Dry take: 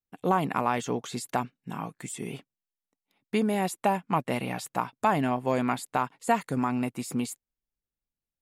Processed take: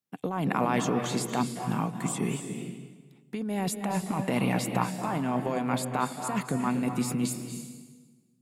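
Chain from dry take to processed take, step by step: HPF 140 Hz 24 dB/oct; tone controls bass +7 dB, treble 0 dB; negative-ratio compressor -28 dBFS, ratio -1; on a send: reverb RT60 1.3 s, pre-delay 0.22 s, DRR 6 dB

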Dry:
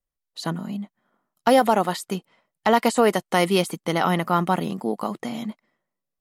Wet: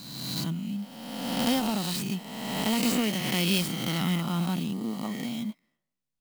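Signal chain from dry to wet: spectral swells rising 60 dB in 1.60 s; band shelf 830 Hz -15.5 dB 2.7 oct, from 5.03 s -9 dB; clock jitter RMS 0.021 ms; gain -3 dB

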